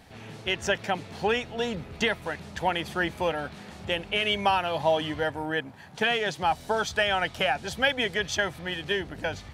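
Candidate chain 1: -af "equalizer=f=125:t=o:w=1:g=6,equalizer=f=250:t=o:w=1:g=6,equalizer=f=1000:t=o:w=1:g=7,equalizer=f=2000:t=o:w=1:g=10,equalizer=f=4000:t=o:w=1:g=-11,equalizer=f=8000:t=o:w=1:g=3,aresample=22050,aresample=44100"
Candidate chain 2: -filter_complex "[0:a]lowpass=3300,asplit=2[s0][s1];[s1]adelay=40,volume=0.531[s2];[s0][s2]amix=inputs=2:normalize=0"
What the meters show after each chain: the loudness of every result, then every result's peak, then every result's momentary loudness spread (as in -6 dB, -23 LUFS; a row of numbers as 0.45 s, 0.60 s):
-22.0 LUFS, -27.5 LUFS; -4.0 dBFS, -10.5 dBFS; 9 LU, 8 LU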